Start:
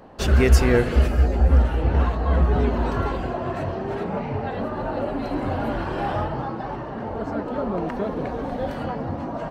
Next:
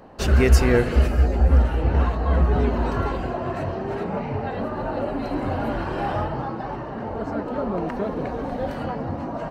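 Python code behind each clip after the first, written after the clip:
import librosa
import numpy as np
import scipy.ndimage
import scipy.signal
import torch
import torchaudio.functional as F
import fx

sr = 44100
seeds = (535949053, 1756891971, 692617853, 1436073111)

y = fx.notch(x, sr, hz=3400.0, q=16.0)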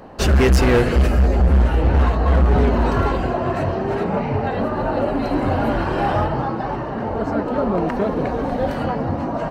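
y = np.clip(x, -10.0 ** (-16.5 / 20.0), 10.0 ** (-16.5 / 20.0))
y = y * 10.0 ** (6.0 / 20.0)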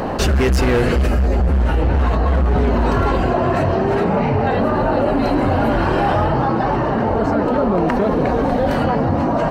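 y = fx.env_flatten(x, sr, amount_pct=70)
y = y * 10.0 ** (-2.5 / 20.0)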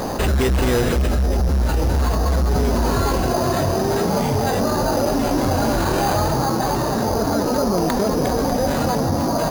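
y = np.repeat(x[::8], 8)[:len(x)]
y = y * 10.0 ** (-2.5 / 20.0)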